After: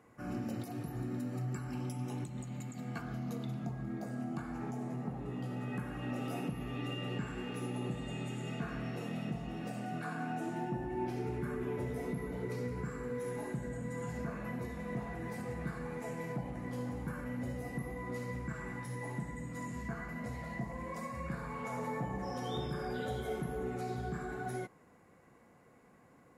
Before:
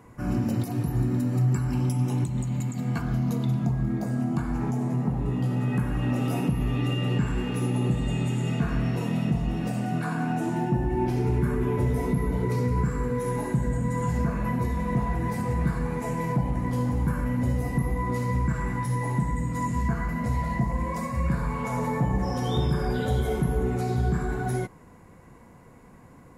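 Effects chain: high-pass 620 Hz 6 dB/octave; tilt EQ -1.5 dB/octave; band-stop 970 Hz, Q 7.7; trim -6 dB

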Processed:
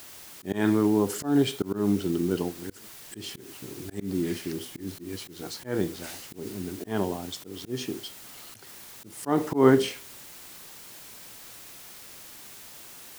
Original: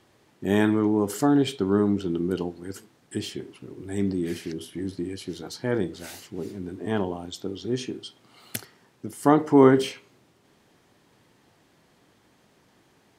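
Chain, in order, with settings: added noise white -46 dBFS; slow attack 158 ms

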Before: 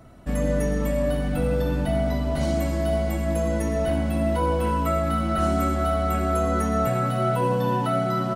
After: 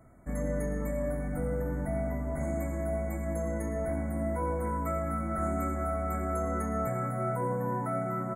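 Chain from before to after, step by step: FFT band-reject 2.3–6.4 kHz; trim -8.5 dB

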